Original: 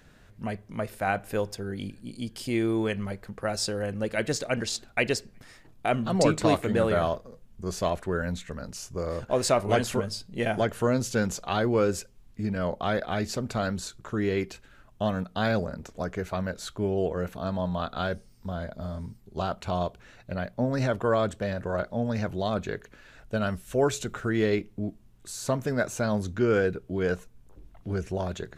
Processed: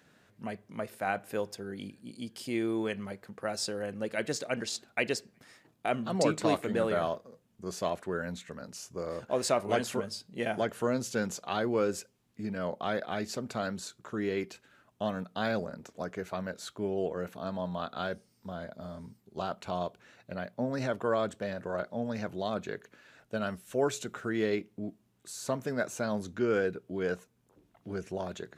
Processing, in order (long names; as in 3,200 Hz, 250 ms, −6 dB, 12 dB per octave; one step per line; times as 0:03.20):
high-pass filter 160 Hz 12 dB per octave
level −4.5 dB